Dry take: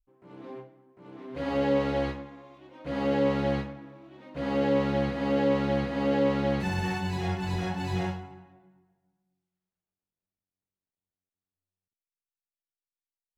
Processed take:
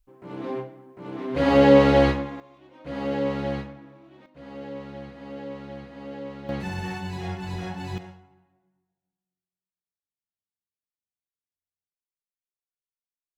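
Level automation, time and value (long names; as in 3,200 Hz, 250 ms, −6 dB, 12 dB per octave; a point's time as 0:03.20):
+11 dB
from 0:02.40 −1 dB
from 0:04.26 −12 dB
from 0:06.49 −2 dB
from 0:07.98 −12.5 dB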